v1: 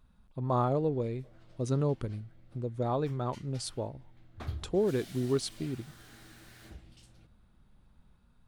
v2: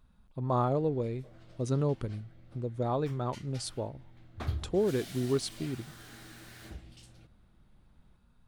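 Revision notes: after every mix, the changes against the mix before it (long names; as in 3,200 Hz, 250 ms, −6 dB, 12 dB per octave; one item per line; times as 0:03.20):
background +4.0 dB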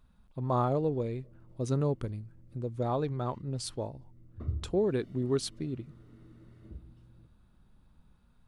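background: add moving average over 54 samples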